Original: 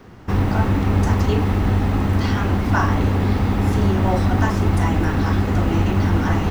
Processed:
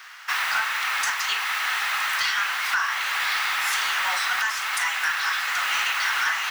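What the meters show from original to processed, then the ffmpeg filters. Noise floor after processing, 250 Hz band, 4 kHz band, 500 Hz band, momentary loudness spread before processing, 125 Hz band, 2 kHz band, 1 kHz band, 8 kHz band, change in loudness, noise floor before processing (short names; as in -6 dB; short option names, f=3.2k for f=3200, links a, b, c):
-29 dBFS, under -40 dB, +10.0 dB, -22.5 dB, 1 LU, under -40 dB, +8.0 dB, -1.5 dB, n/a, -4.0 dB, -23 dBFS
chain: -af "highpass=f=1.4k:w=0.5412,highpass=f=1.4k:w=1.3066,alimiter=level_in=0.5dB:limit=-24dB:level=0:latency=1:release=421,volume=-0.5dB,acontrast=67,asoftclip=type=tanh:threshold=-19.5dB,volume=6dB"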